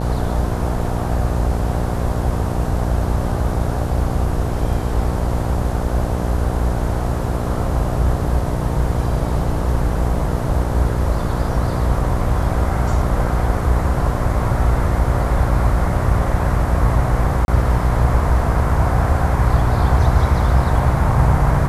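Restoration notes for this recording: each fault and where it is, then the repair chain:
buzz 60 Hz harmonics 15 -22 dBFS
17.45–17.48 s: dropout 31 ms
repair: de-hum 60 Hz, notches 15; interpolate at 17.45 s, 31 ms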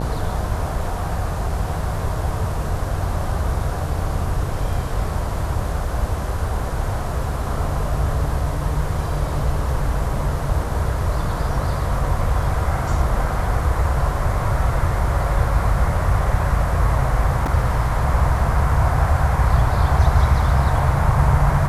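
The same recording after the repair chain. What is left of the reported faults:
nothing left

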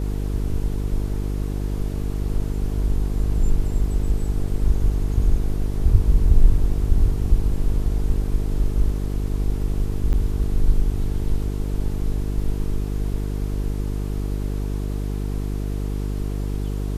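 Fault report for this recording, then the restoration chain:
buzz 50 Hz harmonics 9 -25 dBFS
10.13–10.14 s: dropout 8.2 ms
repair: de-hum 50 Hz, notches 9; interpolate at 10.13 s, 8.2 ms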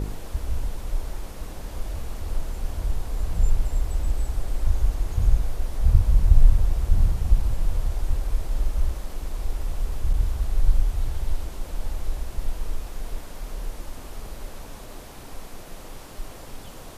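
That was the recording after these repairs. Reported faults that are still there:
nothing left

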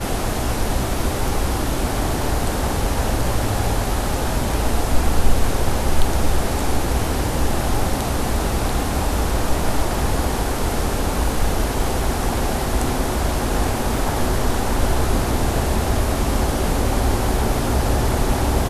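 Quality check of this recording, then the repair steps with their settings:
13.96 s: dropout 2.4 ms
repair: interpolate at 13.96 s, 2.4 ms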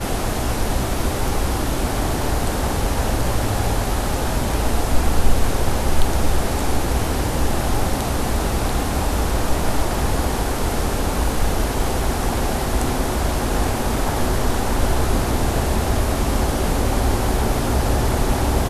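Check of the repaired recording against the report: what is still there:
nothing left

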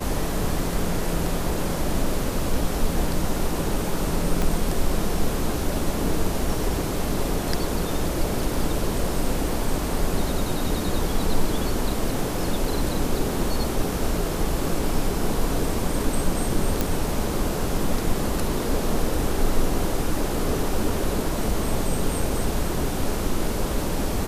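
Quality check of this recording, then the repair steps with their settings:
4.42 s: pop
16.81 s: pop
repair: de-click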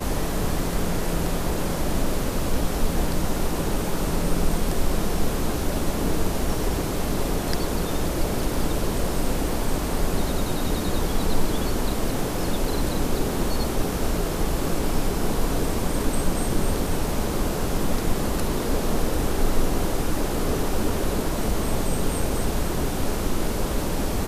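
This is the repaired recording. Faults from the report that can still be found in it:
4.42 s: pop

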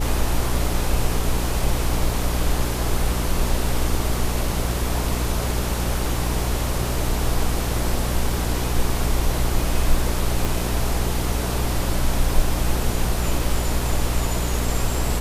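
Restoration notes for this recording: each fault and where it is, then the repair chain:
hum 60 Hz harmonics 7 -25 dBFS
10.45 s: pop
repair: de-click; de-hum 60 Hz, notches 7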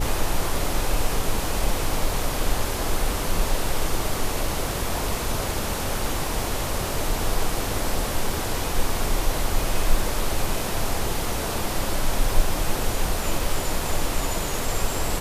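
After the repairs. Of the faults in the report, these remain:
10.45 s: pop

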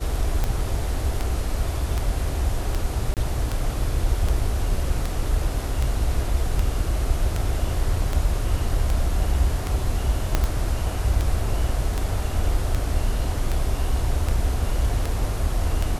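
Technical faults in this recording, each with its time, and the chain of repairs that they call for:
tick 78 rpm -11 dBFS
3.14–3.17 s: dropout 28 ms
10.35 s: pop -6 dBFS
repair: de-click; interpolate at 3.14 s, 28 ms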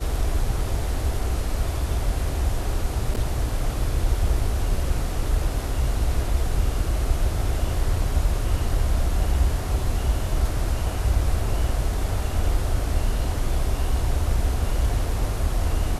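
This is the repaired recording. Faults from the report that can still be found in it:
10.35 s: pop

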